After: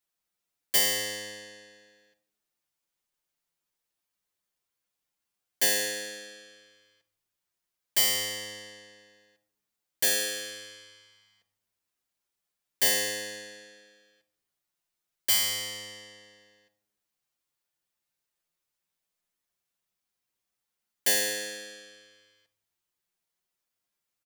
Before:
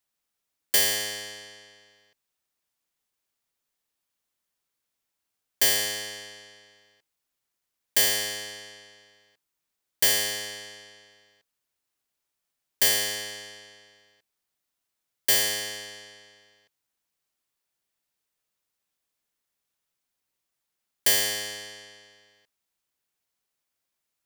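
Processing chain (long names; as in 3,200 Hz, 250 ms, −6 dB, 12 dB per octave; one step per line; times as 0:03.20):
rectangular room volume 2,500 cubic metres, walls furnished, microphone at 0.89 metres
barber-pole flanger 8.3 ms +0.26 Hz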